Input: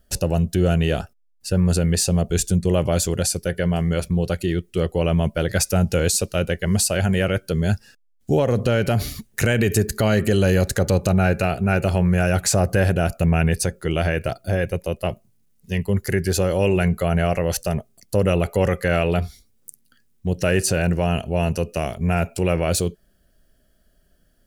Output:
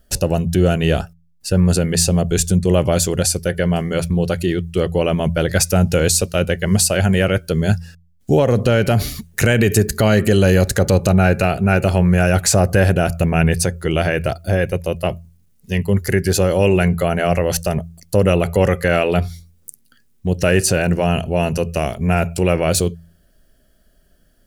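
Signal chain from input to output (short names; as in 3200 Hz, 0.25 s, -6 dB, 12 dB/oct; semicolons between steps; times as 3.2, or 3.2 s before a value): de-hum 83.98 Hz, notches 2; gain +4.5 dB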